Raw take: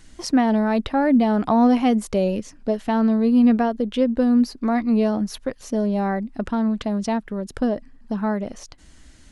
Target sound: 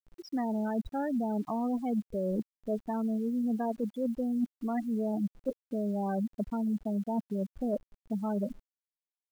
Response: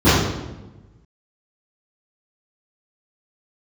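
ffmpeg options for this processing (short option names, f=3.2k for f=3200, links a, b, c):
-af "afftfilt=real='re*gte(hypot(re,im),0.158)':imag='im*gte(hypot(re,im),0.158)':win_size=1024:overlap=0.75,areverse,acompressor=threshold=-28dB:ratio=16,areverse,acrusher=bits=9:mix=0:aa=0.000001"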